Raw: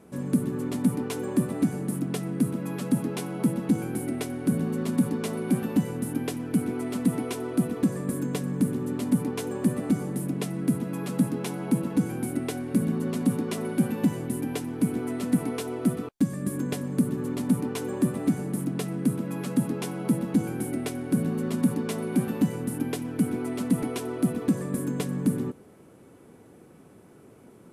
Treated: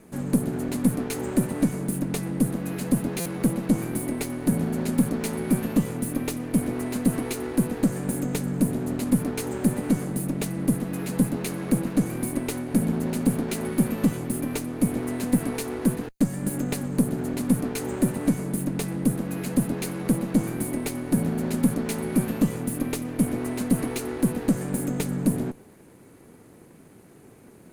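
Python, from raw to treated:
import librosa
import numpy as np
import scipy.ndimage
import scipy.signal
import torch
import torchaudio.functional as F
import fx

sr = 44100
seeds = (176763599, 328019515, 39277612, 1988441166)

y = fx.lower_of_two(x, sr, delay_ms=0.46)
y = fx.high_shelf(y, sr, hz=6200.0, db=5.5)
y = fx.buffer_glitch(y, sr, at_s=(3.2,), block=256, repeats=9)
y = F.gain(torch.from_numpy(y), 2.0).numpy()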